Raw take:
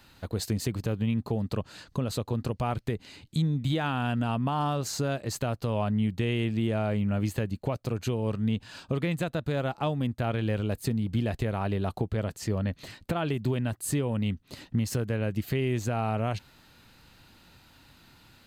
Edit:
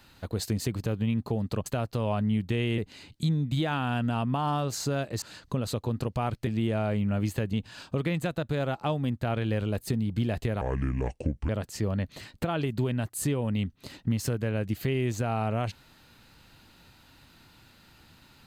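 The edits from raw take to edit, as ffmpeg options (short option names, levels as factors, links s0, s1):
-filter_complex "[0:a]asplit=8[s0][s1][s2][s3][s4][s5][s6][s7];[s0]atrim=end=1.662[s8];[s1]atrim=start=5.348:end=6.472[s9];[s2]atrim=start=2.908:end=5.352[s10];[s3]atrim=start=1.658:end=2.912[s11];[s4]atrim=start=6.468:end=7.532[s12];[s5]atrim=start=8.498:end=11.584[s13];[s6]atrim=start=11.58:end=12.16,asetpts=PTS-STARTPTS,asetrate=29106,aresample=44100[s14];[s7]atrim=start=12.156[s15];[s8][s9]acrossfade=d=0.004:c1=hsin:c2=hsin[s16];[s16][s10]acrossfade=d=0.004:c1=hsin:c2=hsin[s17];[s17][s11]acrossfade=d=0.004:c1=hsin:c2=hsin[s18];[s18][s12]acrossfade=d=0.004:c1=hsin:c2=hsin[s19];[s19][s13]acrossfade=d=0.004:c1=hsin:c2=hsin[s20];[s20][s14]acrossfade=d=0.004:c1=hsin:c2=hsin[s21];[s21][s15]acrossfade=d=0.004:c1=hsin:c2=hsin"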